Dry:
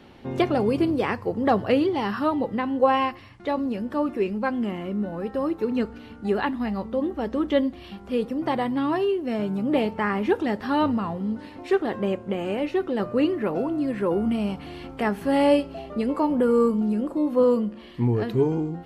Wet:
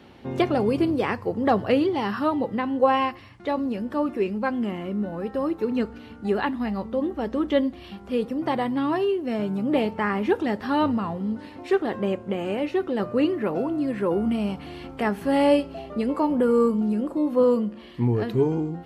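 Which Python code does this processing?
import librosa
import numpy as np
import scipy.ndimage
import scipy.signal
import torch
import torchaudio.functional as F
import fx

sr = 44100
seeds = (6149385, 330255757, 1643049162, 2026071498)

y = scipy.signal.sosfilt(scipy.signal.butter(2, 40.0, 'highpass', fs=sr, output='sos'), x)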